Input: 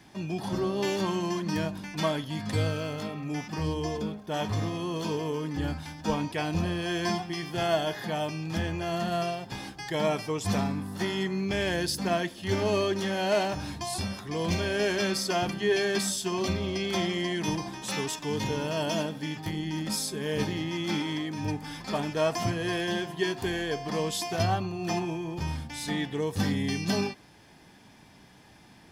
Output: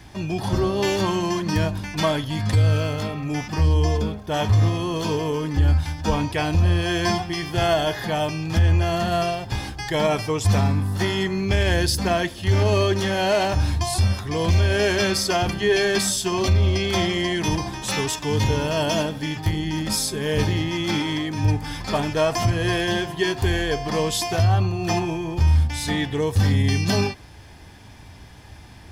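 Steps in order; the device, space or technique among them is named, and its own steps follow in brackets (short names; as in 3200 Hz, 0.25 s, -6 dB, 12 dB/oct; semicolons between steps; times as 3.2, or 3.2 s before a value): car stereo with a boomy subwoofer (resonant low shelf 120 Hz +11.5 dB, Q 1.5; limiter -18 dBFS, peak gain reduction 8 dB); gain +7.5 dB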